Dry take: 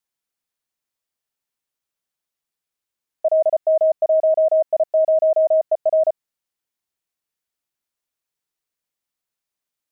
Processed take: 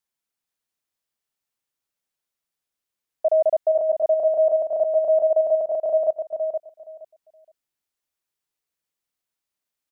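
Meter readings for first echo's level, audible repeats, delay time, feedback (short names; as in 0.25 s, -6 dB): -6.5 dB, 2, 0.47 s, 18%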